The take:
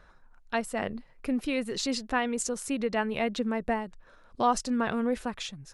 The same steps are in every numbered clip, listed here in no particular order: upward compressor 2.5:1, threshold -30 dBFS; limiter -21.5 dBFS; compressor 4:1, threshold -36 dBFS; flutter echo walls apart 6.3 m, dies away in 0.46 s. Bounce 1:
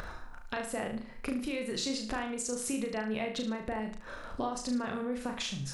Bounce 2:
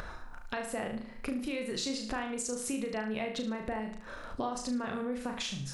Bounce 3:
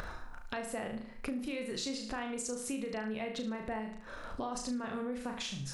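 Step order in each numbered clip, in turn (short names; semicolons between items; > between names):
compressor > upward compressor > flutter echo > limiter; compressor > flutter echo > upward compressor > limiter; upward compressor > limiter > flutter echo > compressor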